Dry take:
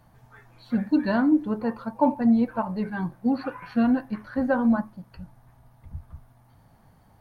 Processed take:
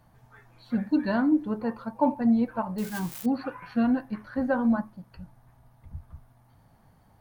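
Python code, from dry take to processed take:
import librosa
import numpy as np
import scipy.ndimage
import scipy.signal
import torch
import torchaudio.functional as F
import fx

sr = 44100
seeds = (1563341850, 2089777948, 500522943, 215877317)

y = fx.crossing_spikes(x, sr, level_db=-24.0, at=(2.78, 3.26))
y = y * 10.0 ** (-2.5 / 20.0)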